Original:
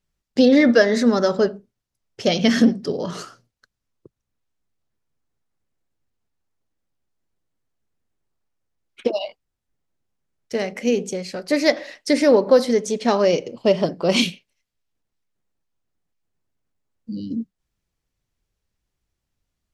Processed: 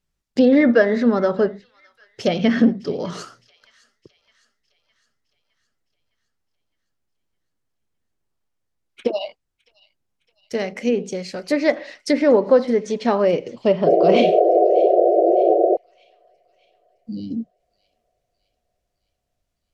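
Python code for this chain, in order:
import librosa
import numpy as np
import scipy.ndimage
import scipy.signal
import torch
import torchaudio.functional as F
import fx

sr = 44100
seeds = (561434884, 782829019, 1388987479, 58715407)

y = fx.env_lowpass_down(x, sr, base_hz=2300.0, full_db=-14.5)
y = fx.spec_paint(y, sr, seeds[0], shape='noise', start_s=13.86, length_s=1.91, low_hz=330.0, high_hz=750.0, level_db=-15.0)
y = fx.echo_wet_highpass(y, sr, ms=611, feedback_pct=53, hz=2100.0, wet_db=-20)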